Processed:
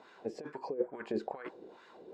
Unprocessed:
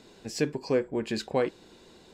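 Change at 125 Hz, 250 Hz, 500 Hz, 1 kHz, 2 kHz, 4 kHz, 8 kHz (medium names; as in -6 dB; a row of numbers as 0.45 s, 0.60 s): -17.5 dB, -10.0 dB, -9.0 dB, -6.0 dB, -11.0 dB, -19.0 dB, under -20 dB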